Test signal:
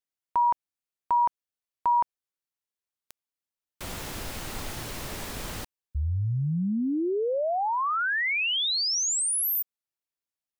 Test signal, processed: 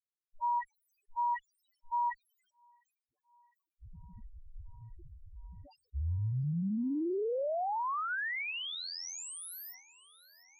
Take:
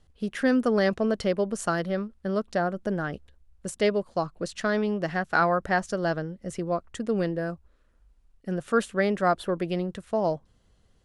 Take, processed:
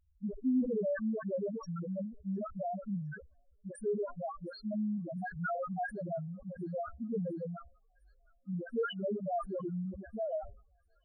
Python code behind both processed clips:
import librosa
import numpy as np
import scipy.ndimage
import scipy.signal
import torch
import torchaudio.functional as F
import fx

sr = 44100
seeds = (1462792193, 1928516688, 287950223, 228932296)

p1 = fx.diode_clip(x, sr, knee_db=-24.0)
p2 = fx.dispersion(p1, sr, late='highs', ms=93.0, hz=530.0)
p3 = fx.spec_topn(p2, sr, count=1)
p4 = p3 + fx.echo_wet_highpass(p3, sr, ms=706, feedback_pct=83, hz=2700.0, wet_db=-20.5, dry=0)
y = fx.sustainer(p4, sr, db_per_s=110.0)